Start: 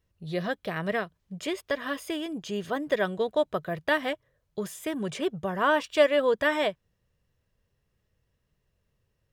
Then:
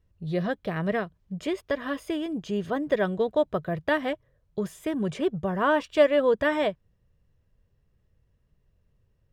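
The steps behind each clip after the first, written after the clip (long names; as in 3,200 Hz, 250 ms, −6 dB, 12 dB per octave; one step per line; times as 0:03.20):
spectral tilt −2 dB per octave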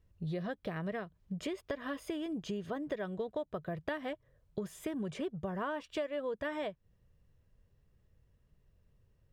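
downward compressor 6 to 1, threshold −34 dBFS, peak gain reduction 19 dB
level −1 dB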